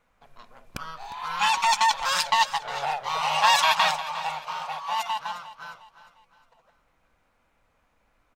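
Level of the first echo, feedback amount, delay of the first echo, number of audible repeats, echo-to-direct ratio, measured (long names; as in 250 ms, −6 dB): −15.0 dB, 40%, 356 ms, 3, −14.0 dB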